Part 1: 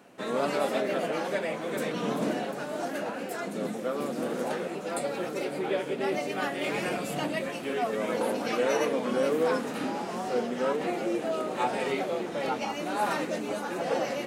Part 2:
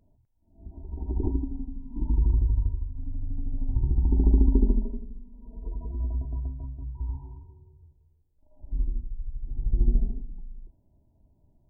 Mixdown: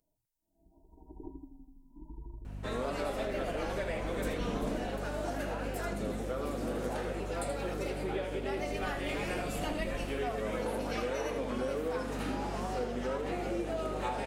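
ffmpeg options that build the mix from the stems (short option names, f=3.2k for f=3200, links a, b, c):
-filter_complex "[0:a]aeval=exprs='val(0)+0.0126*(sin(2*PI*50*n/s)+sin(2*PI*2*50*n/s)/2+sin(2*PI*3*50*n/s)/3+sin(2*PI*4*50*n/s)/4+sin(2*PI*5*50*n/s)/5)':c=same,acompressor=threshold=-29dB:ratio=6,adelay=2450,volume=-2.5dB,asplit=2[a][b];[b]volume=-9dB[c];[1:a]bass=f=250:g=-12,treble=f=4k:g=15,aecho=1:1:6.3:0.47,volume=-11dB[d];[c]aecho=0:1:79:1[e];[a][d][e]amix=inputs=3:normalize=0"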